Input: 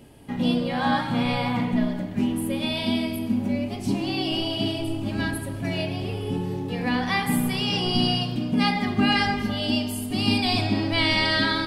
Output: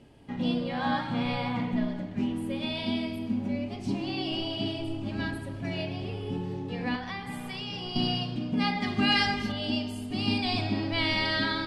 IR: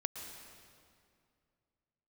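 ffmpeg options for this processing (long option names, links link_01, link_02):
-filter_complex "[0:a]lowpass=6100,asettb=1/sr,asplit=3[link_01][link_02][link_03];[link_01]atrim=end=6.954[link_04];[link_02]atrim=start=6.95:end=7.96,asetpts=PTS-STARTPTS,afade=type=in:duration=0.004:curve=qsin,afade=type=out:start_time=1.006:duration=0.004:curve=qsin,acrossover=split=110|490[link_05][link_06][link_07];[link_05]acompressor=threshold=-41dB:ratio=4[link_08];[link_06]acompressor=threshold=-36dB:ratio=4[link_09];[link_07]acompressor=threshold=-31dB:ratio=4[link_10];[link_08][link_09][link_10]amix=inputs=3:normalize=0[link_11];[link_03]atrim=start=7.956[link_12];[link_04][link_11]acrossfade=duration=0.004:curve1=hsin:curve2=qsin[link_13];[link_13][link_12]acrossfade=duration=0.004:curve1=qsin:curve2=hsin,asettb=1/sr,asplit=3[link_14][link_15][link_16];[link_14]atrim=end=8.824[link_17];[link_15]atrim=start=8.82:end=9.52,asetpts=PTS-STARTPTS,afade=type=in:duration=0.004:curve=qsin,afade=type=out:start_time=0.696:duration=0.004:curve=qsin,highshelf=frequency=2700:gain=10[link_18];[link_16]atrim=start=9.516[link_19];[link_17][link_18]acrossfade=duration=0.004:curve1=hsin:curve2=qsin[link_20];[link_20][link_19]acrossfade=duration=0.004:curve1=qsin:curve2=hsin,volume=-5.5dB"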